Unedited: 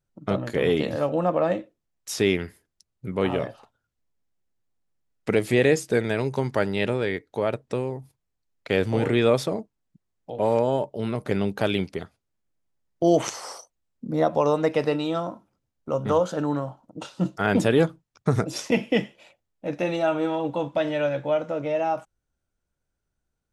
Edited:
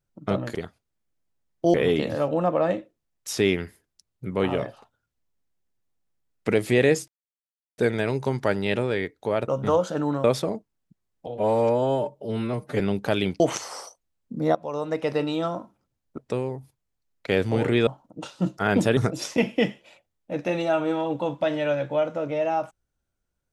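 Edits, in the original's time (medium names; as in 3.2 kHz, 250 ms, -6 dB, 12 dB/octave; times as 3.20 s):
5.89 s: insert silence 0.70 s
7.59–9.28 s: swap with 15.90–16.66 s
10.31–11.33 s: stretch 1.5×
11.93–13.12 s: move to 0.55 s
14.27–15.02 s: fade in, from -17 dB
17.76–18.31 s: delete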